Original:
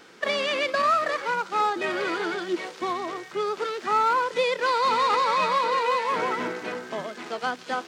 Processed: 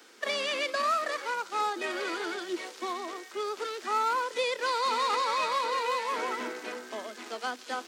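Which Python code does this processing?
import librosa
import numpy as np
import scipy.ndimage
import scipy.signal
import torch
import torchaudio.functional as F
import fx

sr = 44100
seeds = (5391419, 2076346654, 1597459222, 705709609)

y = scipy.signal.sosfilt(scipy.signal.butter(12, 210.0, 'highpass', fs=sr, output='sos'), x)
y = fx.high_shelf(y, sr, hz=5100.0, db=11.5)
y = y * 10.0 ** (-6.5 / 20.0)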